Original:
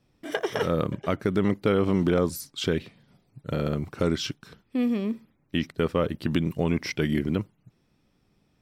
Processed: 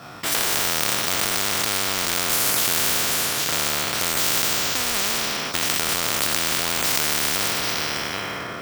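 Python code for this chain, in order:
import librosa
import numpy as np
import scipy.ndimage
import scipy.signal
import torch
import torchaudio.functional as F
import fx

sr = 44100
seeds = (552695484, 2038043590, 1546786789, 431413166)

p1 = fx.spec_trails(x, sr, decay_s=1.68)
p2 = scipy.signal.sosfilt(scipy.signal.butter(2, 110.0, 'highpass', fs=sr, output='sos'), p1)
p3 = fx.high_shelf(p2, sr, hz=2500.0, db=8.5)
p4 = p3 + 10.0 ** (-17.0 / 20.0) * np.pad(p3, (int(783 * sr / 1000.0), 0))[:len(p3)]
p5 = fx.over_compress(p4, sr, threshold_db=-24.0, ratio=-0.5)
p6 = p4 + F.gain(torch.from_numpy(p5), 1.0).numpy()
p7 = fx.quant_float(p6, sr, bits=2)
p8 = np.repeat(scipy.signal.resample_poly(p7, 1, 2), 2)[:len(p7)]
p9 = fx.peak_eq(p8, sr, hz=1200.0, db=14.5, octaves=0.92)
p10 = fx.small_body(p9, sr, hz=(690.0, 1400.0), ring_ms=45, db=13)
p11 = fx.spectral_comp(p10, sr, ratio=10.0)
y = F.gain(torch.from_numpy(p11), -10.0).numpy()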